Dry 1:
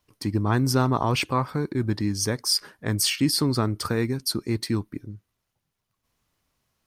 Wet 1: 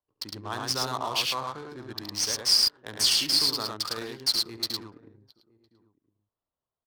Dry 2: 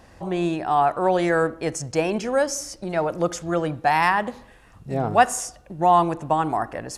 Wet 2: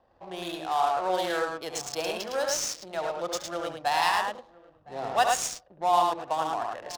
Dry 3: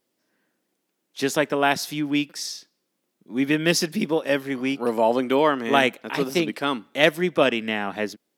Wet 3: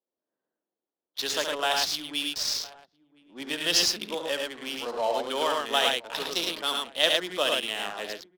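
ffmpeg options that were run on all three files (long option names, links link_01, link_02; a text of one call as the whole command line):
ffmpeg -i in.wav -filter_complex "[0:a]highshelf=frequency=3100:gain=-3.5,asplit=2[link_01][link_02];[link_02]aecho=0:1:69.97|107.9:0.447|0.708[link_03];[link_01][link_03]amix=inputs=2:normalize=0,aexciter=amount=15.9:drive=5.9:freq=3500,acrossover=split=470 3500:gain=0.158 1 0.0891[link_04][link_05][link_06];[link_04][link_05][link_06]amix=inputs=3:normalize=0,asplit=2[link_07][link_08];[link_08]aecho=0:1:1010:0.0891[link_09];[link_07][link_09]amix=inputs=2:normalize=0,adynamicsmooth=sensitivity=5:basefreq=730,volume=-6.5dB" out.wav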